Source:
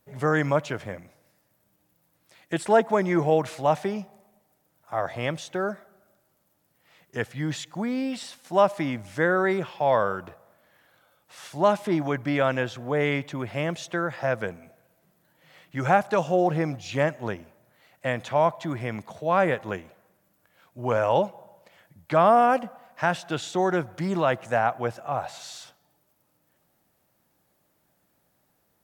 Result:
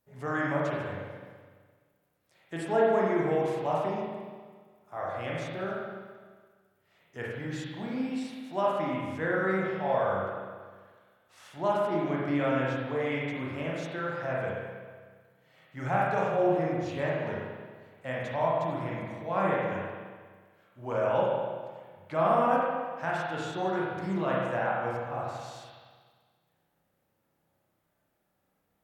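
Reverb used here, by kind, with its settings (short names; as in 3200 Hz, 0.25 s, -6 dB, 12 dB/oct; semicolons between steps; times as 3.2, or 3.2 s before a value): spring tank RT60 1.6 s, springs 31/42 ms, chirp 55 ms, DRR -5.5 dB; gain -11.5 dB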